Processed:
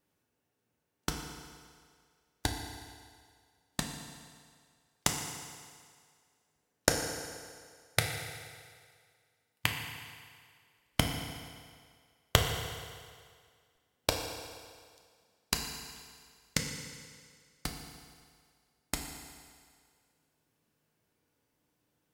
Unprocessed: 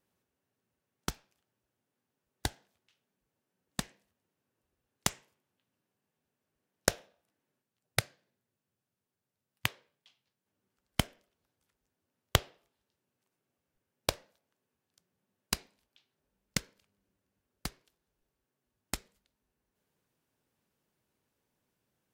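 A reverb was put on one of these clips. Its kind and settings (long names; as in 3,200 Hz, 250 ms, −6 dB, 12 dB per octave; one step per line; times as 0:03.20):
feedback delay network reverb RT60 2 s, low-frequency decay 0.8×, high-frequency decay 0.95×, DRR 2 dB
level +1 dB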